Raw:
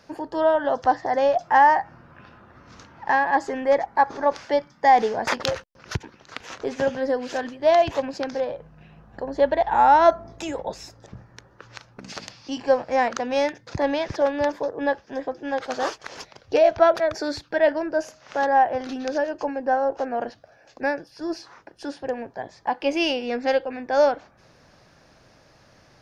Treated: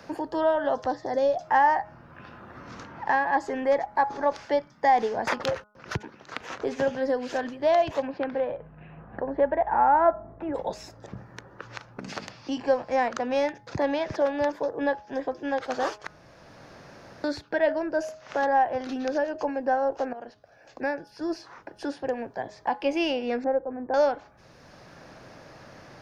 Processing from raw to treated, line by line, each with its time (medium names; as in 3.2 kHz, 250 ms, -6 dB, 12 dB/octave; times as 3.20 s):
0.87–1.38 s: time-frequency box 640–3300 Hz -8 dB
8.07–10.54 s: low-pass 3.2 kHz -> 1.5 kHz 24 dB/octave
16.07–17.24 s: room tone
20.13–21.86 s: fade in equal-power, from -16 dB
23.44–23.94 s: Bessel low-pass 890 Hz, order 6
whole clip: peaking EQ 5.9 kHz -2.5 dB 2.3 oct; de-hum 209.5 Hz, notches 7; three bands compressed up and down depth 40%; trim -2.5 dB